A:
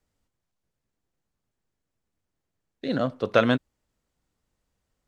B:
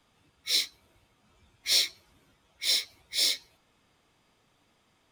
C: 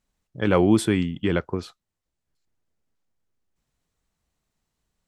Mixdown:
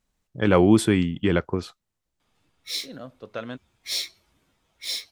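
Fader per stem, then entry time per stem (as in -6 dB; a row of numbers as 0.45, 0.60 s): -14.0, -4.0, +1.5 dB; 0.00, 2.20, 0.00 s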